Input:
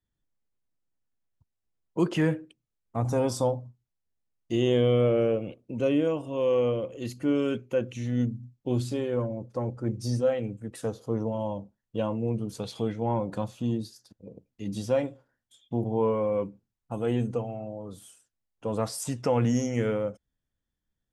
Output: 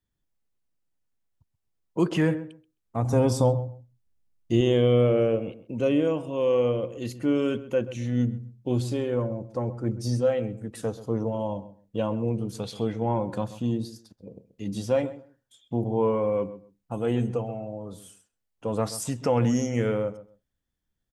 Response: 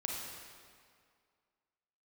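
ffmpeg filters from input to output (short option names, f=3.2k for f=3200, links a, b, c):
-filter_complex "[0:a]asettb=1/sr,asplit=3[a][b][c];[a]atrim=end=3.134[d];[b]atrim=start=3.13:end=4.61,asetpts=PTS-STARTPTS,afade=t=in:d=0.004:c=qsin,afade=t=out:st=1.476:d=0.004:c=qsin,lowshelf=f=210:g=9[e];[c]atrim=start=4.606[f];[d][e]acrossfade=d=0.004:c1=hsin:c2=qsin[g];[g][f]acrossfade=d=0.004:c1=qsin:c2=hsin,asplit=2[h][i];[i]adelay=131,lowpass=f=1.7k:p=1,volume=-14.5dB,asplit=2[j][k];[k]adelay=131,lowpass=f=1.7k:p=1,volume=0.19[l];[h][j][l]amix=inputs=3:normalize=0,volume=1.5dB"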